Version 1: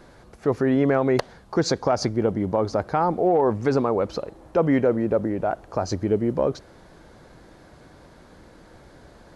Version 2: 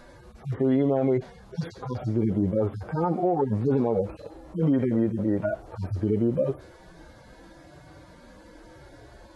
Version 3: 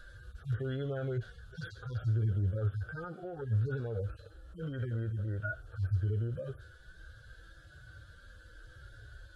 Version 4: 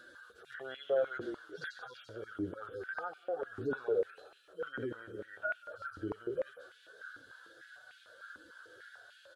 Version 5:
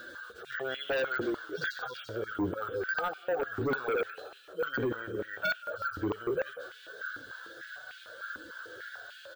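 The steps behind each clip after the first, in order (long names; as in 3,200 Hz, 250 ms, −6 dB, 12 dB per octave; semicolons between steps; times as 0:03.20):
harmonic-percussive split with one part muted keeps harmonic; brickwall limiter −18.5 dBFS, peak gain reduction 8 dB; level +3.5 dB
drawn EQ curve 110 Hz 0 dB, 170 Hz −18 dB, 270 Hz −24 dB, 470 Hz −14 dB, 970 Hz −28 dB, 1,500 Hz +5 dB, 2,100 Hz −22 dB, 3,200 Hz −2 dB, 5,600 Hz −11 dB, 8,700 Hz −8 dB; speech leveller within 5 dB 2 s
echo with shifted repeats 180 ms, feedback 42%, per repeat −35 Hz, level −11 dB; high-pass on a step sequencer 6.7 Hz 300–2,500 Hz
in parallel at −5 dB: sine wavefolder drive 12 dB, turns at −21 dBFS; on the sum: bad sample-rate conversion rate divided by 2×, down filtered, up hold; level −3 dB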